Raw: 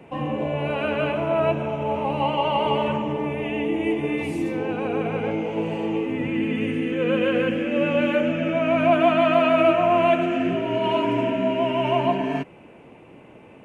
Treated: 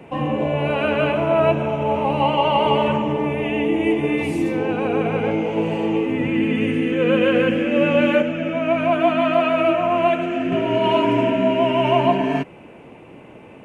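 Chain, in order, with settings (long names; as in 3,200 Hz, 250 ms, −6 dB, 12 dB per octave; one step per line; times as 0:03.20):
0:08.22–0:10.52: flanger 1.5 Hz, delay 1.8 ms, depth 2.3 ms, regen +77%
level +4.5 dB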